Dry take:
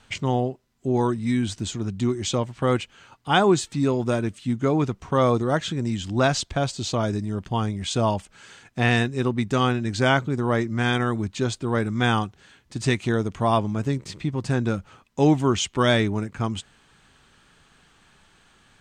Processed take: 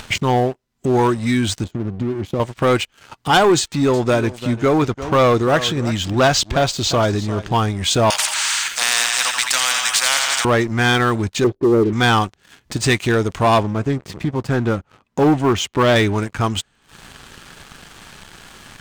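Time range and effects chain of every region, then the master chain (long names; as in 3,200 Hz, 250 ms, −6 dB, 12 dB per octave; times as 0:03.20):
0:01.64–0:02.40: resonant band-pass 210 Hz, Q 0.53 + downward compressor 2.5 to 1, threshold −25 dBFS
0:03.59–0:07.58: low-pass filter 7,600 Hz + single-tap delay 346 ms −16 dB
0:08.10–0:10.45: inverse Chebyshev high-pass filter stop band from 390 Hz, stop band 60 dB + repeating echo 85 ms, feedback 56%, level −13 dB + every bin compressed towards the loudest bin 4 to 1
0:11.44–0:11.93: low-pass with resonance 380 Hz, resonance Q 3.8 + low-shelf EQ 95 Hz −7 dB
0:13.63–0:15.96: high-pass filter 67 Hz 6 dB per octave + high-shelf EQ 2,200 Hz −11 dB + highs frequency-modulated by the lows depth 0.17 ms
whole clip: dynamic equaliser 180 Hz, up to −8 dB, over −36 dBFS, Q 0.77; upward compression, threshold −35 dBFS; leveller curve on the samples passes 3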